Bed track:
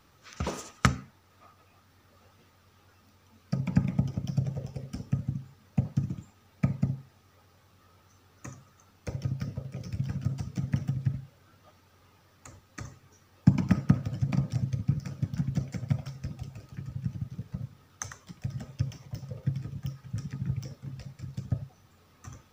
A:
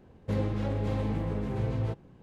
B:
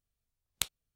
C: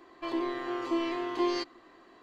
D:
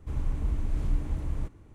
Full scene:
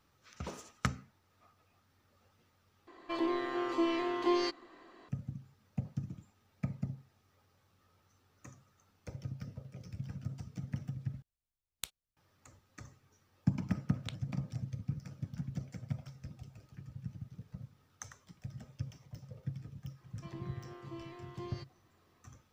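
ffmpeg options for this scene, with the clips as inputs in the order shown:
-filter_complex "[3:a]asplit=2[a][b];[2:a]asplit=2[c][d];[0:a]volume=-10dB[e];[c]acrusher=bits=8:mode=log:mix=0:aa=0.000001[f];[d]lowpass=3.6k[g];[e]asplit=3[h][i][j];[h]atrim=end=2.874[k];[a]atrim=end=2.22,asetpts=PTS-STARTPTS,volume=-1dB[l];[i]atrim=start=5.086:end=11.224[m];[f]atrim=end=0.95,asetpts=PTS-STARTPTS,volume=-9dB[n];[j]atrim=start=12.166[o];[g]atrim=end=0.95,asetpts=PTS-STARTPTS,volume=-8.5dB,afade=t=in:d=0.004:c=hsin,afade=t=out:st=0.946:d=0.004:c=hsin,adelay=13470[p];[b]atrim=end=2.22,asetpts=PTS-STARTPTS,volume=-17.5dB,afade=t=in:d=0.004:c=hsin,afade=t=out:st=2.216:d=0.004:c=hsin,adelay=20000[q];[k][l]acrossfade=d=0.004:c1=hsin:c2=hsin[r];[r][m]acrossfade=d=0.004:c1=hsin:c2=hsin[s];[s][n]acrossfade=d=0.004:c1=hsin:c2=hsin[t];[t][o]acrossfade=d=0.004:c1=hsin:c2=hsin[u];[u][p][q]amix=inputs=3:normalize=0"

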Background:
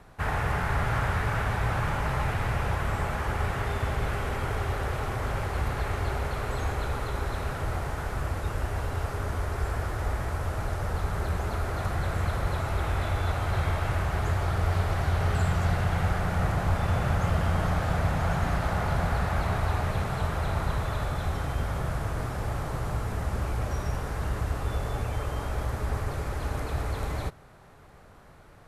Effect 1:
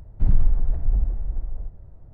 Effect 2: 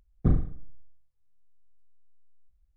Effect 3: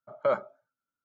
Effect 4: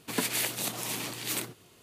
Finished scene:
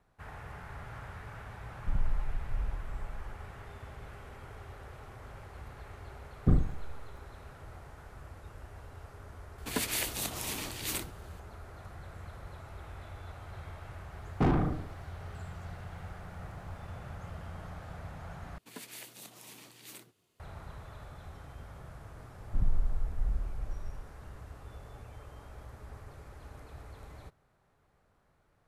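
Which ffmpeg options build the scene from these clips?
-filter_complex "[1:a]asplit=2[a][b];[2:a]asplit=2[c][d];[4:a]asplit=2[e][f];[0:a]volume=-18dB[g];[c]aeval=exprs='val(0)*gte(abs(val(0)),0.00335)':c=same[h];[d]asplit=2[i][j];[j]highpass=f=720:p=1,volume=46dB,asoftclip=type=tanh:threshold=-10dB[k];[i][k]amix=inputs=2:normalize=0,lowpass=f=1k:p=1,volume=-6dB[l];[g]asplit=2[m][n];[m]atrim=end=18.584[o];[f]atrim=end=1.82,asetpts=PTS-STARTPTS,volume=-17dB[p];[n]atrim=start=20.396[q];[a]atrim=end=2.13,asetpts=PTS-STARTPTS,volume=-13dB,afade=t=in:d=0.004:c=hsin,afade=t=out:st=2.126:d=0.004:c=hsin,adelay=1660[r];[h]atrim=end=2.76,asetpts=PTS-STARTPTS,volume=-1.5dB,afade=t=in:d=0.004:c=hsin,afade=t=out:st=2.756:d=0.004:c=hsin,adelay=6220[s];[e]atrim=end=1.82,asetpts=PTS-STARTPTS,volume=-3dB,afade=t=in:d=0.004:c=hsin,afade=t=out:st=1.816:d=0.004:c=hsin,adelay=9580[t];[l]atrim=end=2.76,asetpts=PTS-STARTPTS,volume=-7.5dB,afade=t=in:d=0.004:c=hsin,afade=t=out:st=2.756:d=0.004:c=hsin,adelay=14160[u];[b]atrim=end=2.13,asetpts=PTS-STARTPTS,volume=-10.5dB,afade=t=in:d=0.004:c=hsin,afade=t=out:st=2.126:d=0.004:c=hsin,adelay=22330[v];[o][p]acrossfade=d=0.004:c1=hsin:c2=hsin[w];[w][q]acrossfade=d=0.004:c1=hsin:c2=hsin[x];[x][r][s][t][u][v]amix=inputs=6:normalize=0"

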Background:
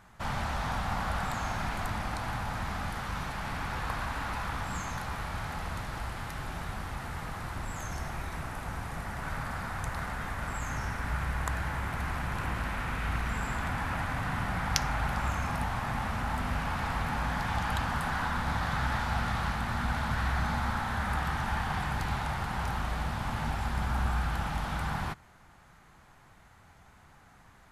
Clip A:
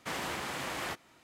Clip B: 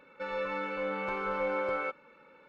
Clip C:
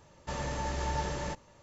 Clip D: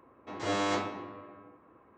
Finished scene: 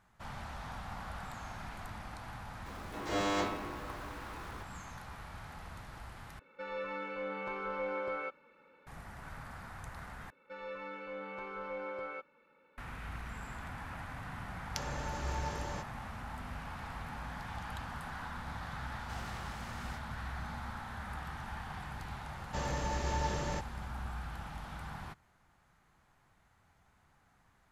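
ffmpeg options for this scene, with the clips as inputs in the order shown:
-filter_complex "[2:a]asplit=2[a][b];[3:a]asplit=2[c][d];[0:a]volume=-11.5dB[e];[4:a]aeval=exprs='val(0)+0.5*0.00562*sgn(val(0))':c=same[f];[1:a]equalizer=f=5.5k:w=1.5:g=5[g];[e]asplit=3[h][i][j];[h]atrim=end=6.394[k];[a]atrim=end=2.48,asetpts=PTS-STARTPTS,volume=-5.5dB[l];[i]atrim=start=8.866:end=10.304[m];[b]atrim=end=2.48,asetpts=PTS-STARTPTS,volume=-9.5dB[n];[j]atrim=start=12.776[o];[f]atrim=end=1.97,asetpts=PTS-STARTPTS,volume=-3dB,afade=t=in:d=0.004:c=hsin,afade=t=out:st=1.966:d=0.004:c=hsin,adelay=2660[p];[c]atrim=end=1.62,asetpts=PTS-STARTPTS,volume=-6dB,afade=t=in:d=0.004:c=hsin,afade=t=out:st=1.616:d=0.004:c=hsin,adelay=14480[q];[g]atrim=end=1.23,asetpts=PTS-STARTPTS,volume=-15dB,afade=t=in:d=0.004:c=hsin,afade=t=out:st=1.226:d=0.004:c=hsin,adelay=19030[r];[d]atrim=end=1.62,asetpts=PTS-STARTPTS,volume=-1.5dB,afade=t=in:d=0.004:c=hsin,afade=t=out:st=1.616:d=0.004:c=hsin,adelay=22260[s];[k][l]acrossfade=d=0.004:c1=hsin:c2=hsin[t];[t][m]acrossfade=d=0.004:c1=hsin:c2=hsin[u];[u][n]acrossfade=d=0.004:c1=hsin:c2=hsin[v];[v][o]acrossfade=d=0.004:c1=hsin:c2=hsin[w];[w][p][q][r][s]amix=inputs=5:normalize=0"

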